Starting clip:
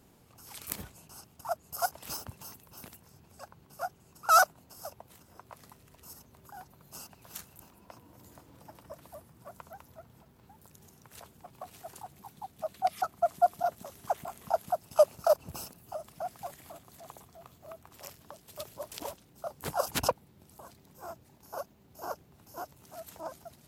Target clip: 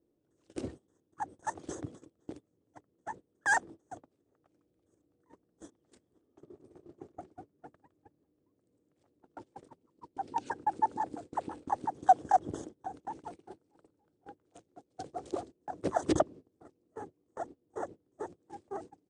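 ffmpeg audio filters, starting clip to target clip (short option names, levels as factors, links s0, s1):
-af "firequalizer=gain_entry='entry(170,0);entry(250,15);entry(770,-7)':delay=0.05:min_phase=1,aresample=16000,aresample=44100,lowshelf=f=130:g=4,asetrate=54684,aresample=44100,agate=range=0.0708:threshold=0.00562:ratio=16:detection=peak"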